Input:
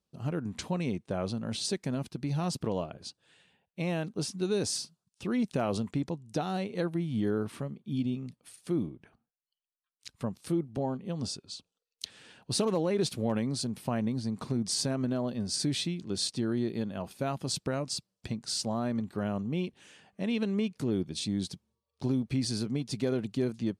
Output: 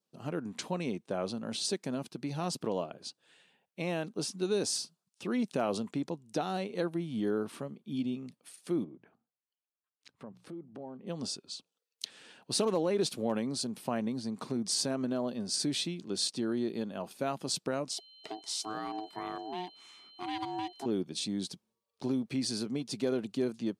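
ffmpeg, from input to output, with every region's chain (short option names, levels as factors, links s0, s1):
-filter_complex "[0:a]asettb=1/sr,asplit=3[s0][s1][s2];[s0]atrim=end=8.844[s3];[s1]atrim=start=8.84:end=11.07,asetpts=PTS-STARTPTS,afade=t=in:d=0.004:c=qsin,afade=t=out:st=2.226:d=0.004:c=qsin,lowpass=f=1200:p=1,bandreject=f=60:t=h:w=6,bandreject=f=120:t=h:w=6,bandreject=f=180:t=h:w=6,acompressor=threshold=0.01:ratio=4:attack=3.2:release=140:knee=1:detection=peak[s4];[s2]atrim=start=11.066[s5];[s3][s4]acrossfade=d=0.004:c1=hsin:c2=qsin[s6];[s6][s5]acrossfade=d=0.004:c1=qsin:c2=hsin,asettb=1/sr,asplit=3[s7][s8][s9];[s7]atrim=end=17.914[s10];[s8]atrim=start=17.91:end=20.86,asetpts=PTS-STARTPTS,afade=t=in:d=0.004:c=qsin,afade=t=out:st=2.946:d=0.004:c=qsin,lowshelf=f=400:g=-5,aeval=exprs='val(0)+0.00282*sin(2*PI*3600*n/s)':c=same,aeval=exprs='val(0)*sin(2*PI*540*n/s)':c=same[s11];[s9]atrim=start=20.856[s12];[s10][s11]acrossfade=d=0.004:c1=hsin:c2=qsin[s13];[s13][s12]acrossfade=d=0.004:c1=qsin:c2=hsin,highpass=220,adynamicequalizer=threshold=0.00112:dfrequency=2000:dqfactor=2.8:tfrequency=2000:tqfactor=2.8:attack=5:release=100:ratio=0.375:range=2:mode=cutabove:tftype=bell"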